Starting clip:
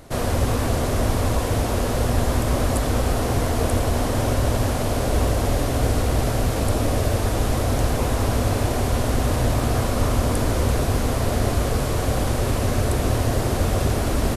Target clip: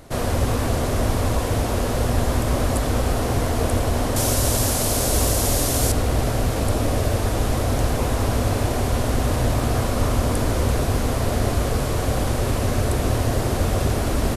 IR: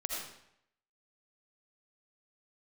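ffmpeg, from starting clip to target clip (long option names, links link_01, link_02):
-filter_complex "[0:a]asettb=1/sr,asplit=3[link_01][link_02][link_03];[link_01]atrim=end=4.164[link_04];[link_02]atrim=start=4.16:end=5.92,asetpts=PTS-STARTPTS,afade=type=in:duration=0.004:curve=qsin,afade=type=out:start_time=1.756:duration=0.004:curve=qsin,bass=frequency=250:gain=-1,treble=frequency=4000:gain=13[link_05];[link_03]atrim=start=5.916[link_06];[link_04][link_05]acrossfade=duration=0.004:curve1=hsin:curve2=qsin[link_07];[link_07][link_06]acrossfade=duration=0.004:curve1=qsin:curve2=hsin"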